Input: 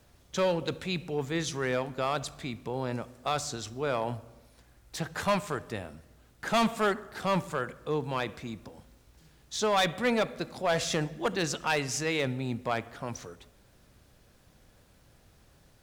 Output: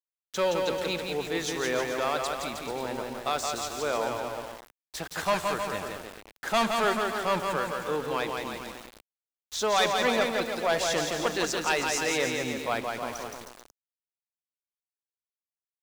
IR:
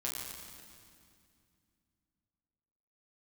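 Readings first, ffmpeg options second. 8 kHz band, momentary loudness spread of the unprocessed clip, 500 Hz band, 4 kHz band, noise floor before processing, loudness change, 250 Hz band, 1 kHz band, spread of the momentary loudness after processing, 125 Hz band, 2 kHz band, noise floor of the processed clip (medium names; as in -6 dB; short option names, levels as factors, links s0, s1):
+4.0 dB, 12 LU, +2.5 dB, +3.5 dB, -61 dBFS, +2.5 dB, -1.0 dB, +3.5 dB, 14 LU, -6.5 dB, +3.5 dB, under -85 dBFS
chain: -af "aecho=1:1:170|314.5|437.3|541.7|630.5:0.631|0.398|0.251|0.158|0.1,aeval=exprs='val(0)*gte(abs(val(0)),0.01)':c=same,equalizer=f=130:t=o:w=1.3:g=-12.5,volume=1.19"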